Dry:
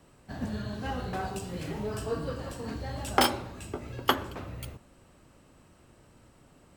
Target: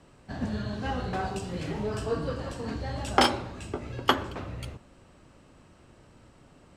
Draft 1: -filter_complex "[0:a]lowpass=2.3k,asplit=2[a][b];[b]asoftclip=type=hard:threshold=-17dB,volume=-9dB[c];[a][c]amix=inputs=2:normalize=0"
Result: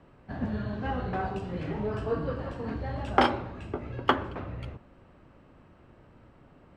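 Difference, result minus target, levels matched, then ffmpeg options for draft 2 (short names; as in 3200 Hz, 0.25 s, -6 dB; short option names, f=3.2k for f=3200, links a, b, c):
8000 Hz band -16.5 dB
-filter_complex "[0:a]lowpass=7.2k,asplit=2[a][b];[b]asoftclip=type=hard:threshold=-17dB,volume=-9dB[c];[a][c]amix=inputs=2:normalize=0"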